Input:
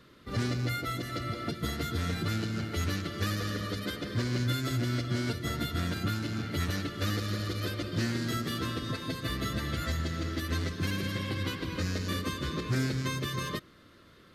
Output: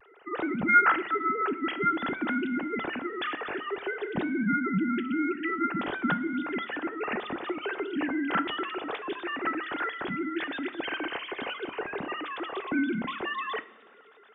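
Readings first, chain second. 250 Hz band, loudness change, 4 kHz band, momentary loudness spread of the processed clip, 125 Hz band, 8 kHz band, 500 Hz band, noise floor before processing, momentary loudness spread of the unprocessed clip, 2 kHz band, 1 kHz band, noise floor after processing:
+3.5 dB, +3.0 dB, −4.0 dB, 8 LU, −14.0 dB, below −35 dB, +4.5 dB, −57 dBFS, 4 LU, +8.0 dB, +9.5 dB, −55 dBFS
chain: three sine waves on the formant tracks
coupled-rooms reverb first 0.43 s, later 2.6 s, from −18 dB, DRR 11.5 dB
pitch vibrato 0.52 Hz 28 cents
level +2 dB

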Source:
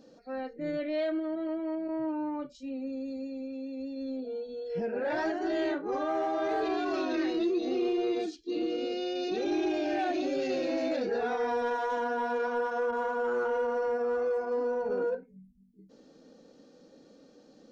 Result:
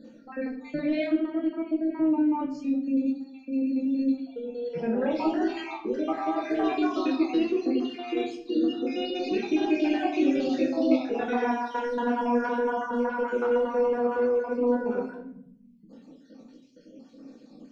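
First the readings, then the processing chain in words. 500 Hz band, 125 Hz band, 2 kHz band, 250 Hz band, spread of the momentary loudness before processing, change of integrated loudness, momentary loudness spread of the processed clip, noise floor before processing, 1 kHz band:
+2.0 dB, can't be measured, +1.5 dB, +7.5 dB, 8 LU, +4.5 dB, 7 LU, −59 dBFS, +2.5 dB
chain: time-frequency cells dropped at random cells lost 50%
graphic EQ with 15 bands 250 Hz +11 dB, 1,000 Hz +3 dB, 2,500 Hz +7 dB
rectangular room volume 110 cubic metres, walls mixed, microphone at 0.72 metres

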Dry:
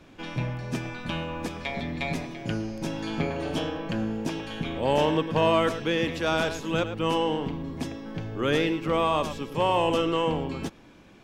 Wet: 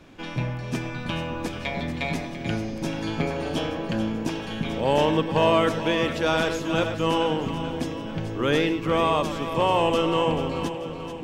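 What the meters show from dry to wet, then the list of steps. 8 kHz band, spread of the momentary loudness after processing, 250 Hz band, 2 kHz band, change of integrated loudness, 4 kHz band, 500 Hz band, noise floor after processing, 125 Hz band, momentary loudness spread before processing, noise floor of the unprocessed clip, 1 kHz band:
+2.5 dB, 9 LU, +2.5 dB, +2.5 dB, +2.5 dB, +2.5 dB, +2.5 dB, −34 dBFS, +2.5 dB, 10 LU, −52 dBFS, +2.5 dB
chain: echo with a time of its own for lows and highs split 560 Hz, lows 580 ms, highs 437 ms, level −10 dB
level +2 dB

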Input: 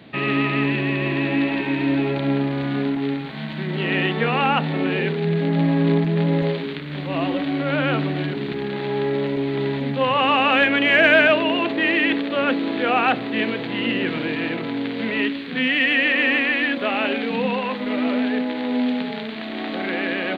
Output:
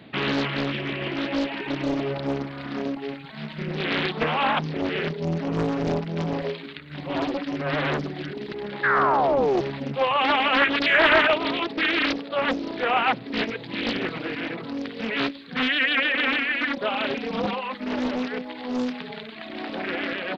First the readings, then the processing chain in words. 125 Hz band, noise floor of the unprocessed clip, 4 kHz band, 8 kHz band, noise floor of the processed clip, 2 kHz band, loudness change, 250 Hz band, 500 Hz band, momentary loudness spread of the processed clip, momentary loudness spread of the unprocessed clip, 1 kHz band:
−7.5 dB, −30 dBFS, −1.5 dB, can't be measured, −39 dBFS, −3.5 dB, −3.5 dB, −6.5 dB, −3.5 dB, 13 LU, 9 LU, −1.0 dB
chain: reverb reduction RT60 2 s
sound drawn into the spectrogram fall, 0:08.83–0:09.61, 330–1,700 Hz −19 dBFS
highs frequency-modulated by the lows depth 0.99 ms
level −1.5 dB

